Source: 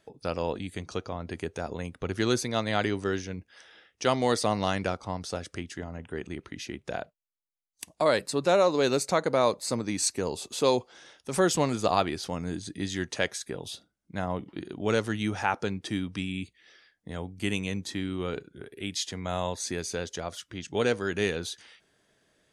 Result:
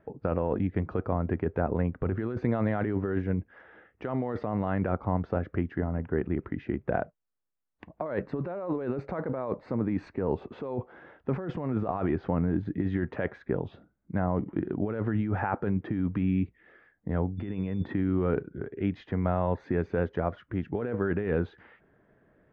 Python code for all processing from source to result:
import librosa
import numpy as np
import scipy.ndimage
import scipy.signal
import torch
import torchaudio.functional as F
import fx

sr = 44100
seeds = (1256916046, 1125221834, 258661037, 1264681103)

y = fx.over_compress(x, sr, threshold_db=-39.0, ratio=-1.0, at=(17.37, 17.92), fade=0.02)
y = fx.high_shelf(y, sr, hz=5000.0, db=-8.5, at=(17.37, 17.92), fade=0.02)
y = fx.dmg_tone(y, sr, hz=3500.0, level_db=-42.0, at=(17.37, 17.92), fade=0.02)
y = scipy.signal.sosfilt(scipy.signal.butter(4, 1800.0, 'lowpass', fs=sr, output='sos'), y)
y = fx.low_shelf(y, sr, hz=460.0, db=6.5)
y = fx.over_compress(y, sr, threshold_db=-28.0, ratio=-1.0)